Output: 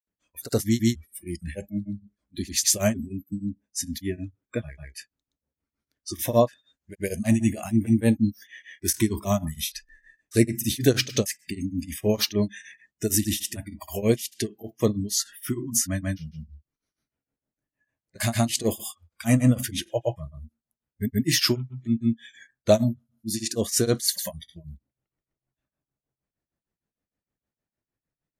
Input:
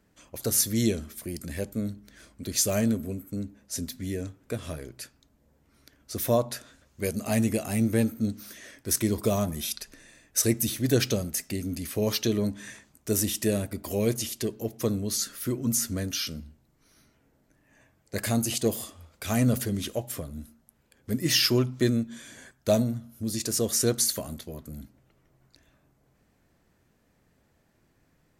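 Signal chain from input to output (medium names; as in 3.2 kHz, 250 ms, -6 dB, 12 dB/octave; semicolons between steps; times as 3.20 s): spectral noise reduction 26 dB; granulator 190 ms, grains 6.5 per s, pitch spread up and down by 0 st; trim +6 dB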